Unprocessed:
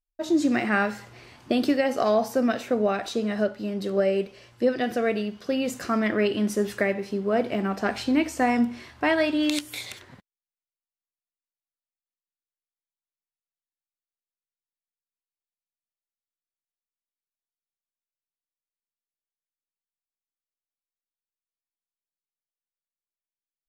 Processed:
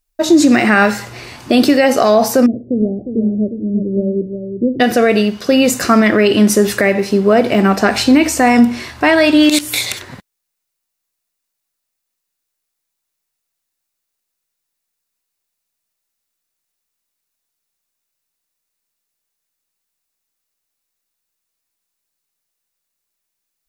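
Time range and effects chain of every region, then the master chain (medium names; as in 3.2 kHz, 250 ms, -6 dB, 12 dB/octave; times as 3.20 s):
2.46–4.80 s: Gaussian low-pass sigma 25 samples + delay 357 ms -8 dB
whole clip: treble shelf 4 kHz +5.5 dB; band-stop 3.2 kHz, Q 18; loudness maximiser +16 dB; trim -1 dB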